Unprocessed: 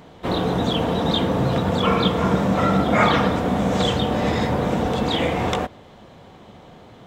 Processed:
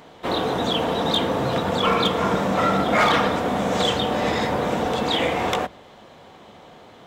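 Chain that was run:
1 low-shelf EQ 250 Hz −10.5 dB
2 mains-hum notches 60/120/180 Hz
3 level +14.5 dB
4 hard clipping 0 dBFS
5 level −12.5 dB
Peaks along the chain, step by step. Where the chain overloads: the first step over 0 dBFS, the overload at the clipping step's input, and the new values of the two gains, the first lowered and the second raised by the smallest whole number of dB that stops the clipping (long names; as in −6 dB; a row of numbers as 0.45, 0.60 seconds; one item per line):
−5.0, −5.0, +9.5, 0.0, −12.5 dBFS
step 3, 9.5 dB
step 3 +4.5 dB, step 5 −2.5 dB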